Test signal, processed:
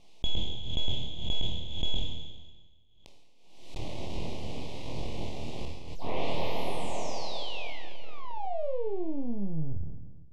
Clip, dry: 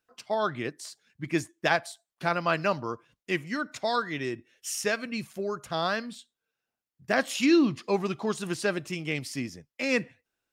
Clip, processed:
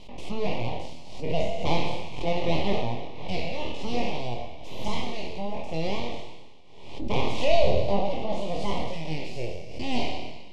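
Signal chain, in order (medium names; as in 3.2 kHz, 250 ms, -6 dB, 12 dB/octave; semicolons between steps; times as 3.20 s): spectral sustain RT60 1.35 s; bass shelf 83 Hz +6 dB; full-wave rectifier; low-pass 3 kHz 12 dB/octave; dynamic bell 560 Hz, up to +4 dB, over -42 dBFS, Q 1.1; Butterworth band-stop 1.5 kHz, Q 0.84; on a send: flutter echo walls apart 4.3 m, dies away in 0.21 s; on the sum: swell ahead of each attack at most 58 dB/s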